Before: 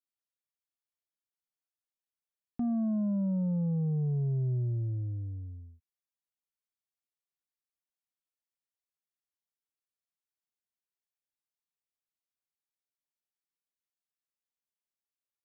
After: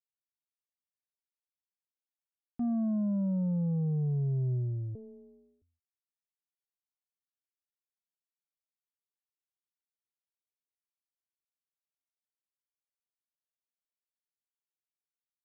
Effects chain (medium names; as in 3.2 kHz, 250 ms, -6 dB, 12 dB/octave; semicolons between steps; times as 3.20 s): 4.95–5.62 s: ring modulator 330 Hz; upward expansion 2.5:1, over -48 dBFS